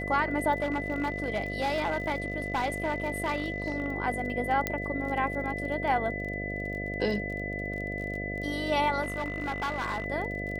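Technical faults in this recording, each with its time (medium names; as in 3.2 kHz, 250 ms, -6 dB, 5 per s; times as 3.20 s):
buzz 50 Hz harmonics 14 -36 dBFS
crackle 23 per s -37 dBFS
whine 2 kHz -35 dBFS
0.62–3.86 s: clipped -24 dBFS
4.67 s: pop -12 dBFS
9.02–10.06 s: clipped -27.5 dBFS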